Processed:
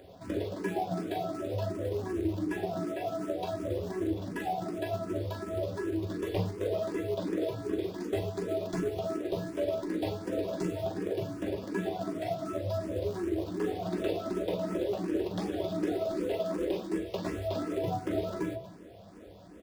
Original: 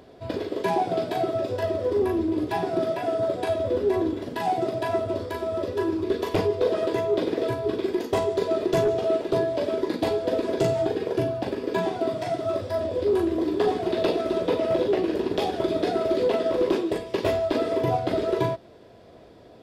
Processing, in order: echo 0.235 s -21.5 dB; in parallel at -6 dB: companded quantiser 4-bit; on the sum: compressor 2:1, threshold -27 dBFS, peak gain reduction 7.5 dB; on a send at -4 dB: tilt shelf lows +6.5 dB, about 820 Hz + reverb RT60 0.35 s, pre-delay 5 ms; on the sum: endless phaser +2.7 Hz; gain -5.5 dB

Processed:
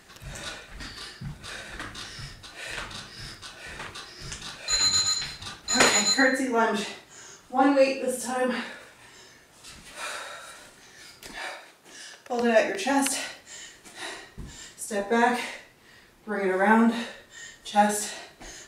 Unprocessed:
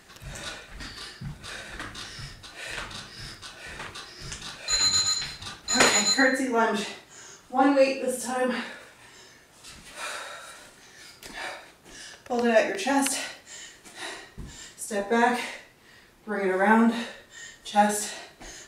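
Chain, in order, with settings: 11.38–12.4 HPF 290 Hz 6 dB/oct

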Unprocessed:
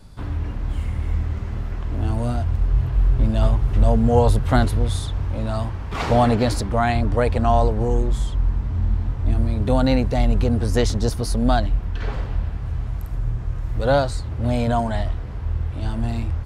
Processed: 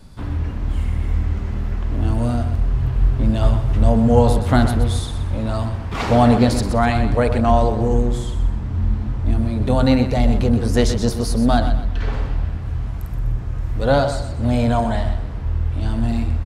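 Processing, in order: bell 240 Hz +3 dB; de-hum 51.22 Hz, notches 32; on a send: feedback echo 0.125 s, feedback 34%, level -10 dB; on the sum: gain +2 dB

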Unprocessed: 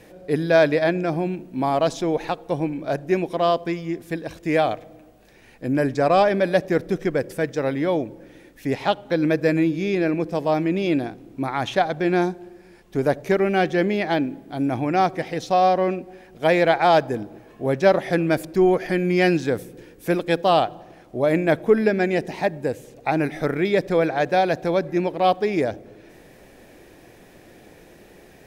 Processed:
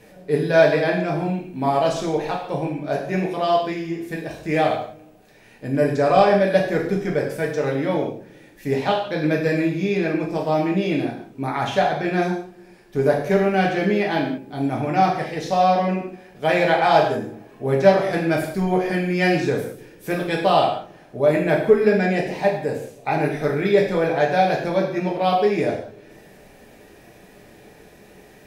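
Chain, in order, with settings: non-linear reverb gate 0.22 s falling, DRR -2.5 dB; gain -3 dB

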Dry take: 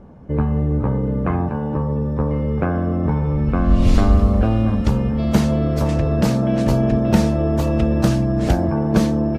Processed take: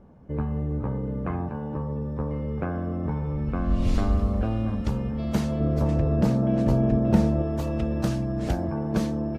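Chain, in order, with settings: 5.6–7.42 tilt shelf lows +5 dB, about 1300 Hz; gain -9 dB

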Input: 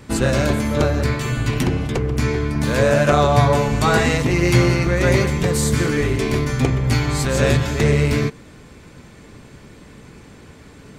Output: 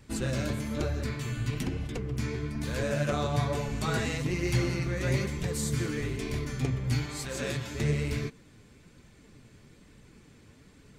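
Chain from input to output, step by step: bell 820 Hz -6 dB 2.2 oct; flange 1.1 Hz, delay 1 ms, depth 9.3 ms, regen +47%; 7.06–7.75 low shelf 160 Hz -11.5 dB; gain -7 dB

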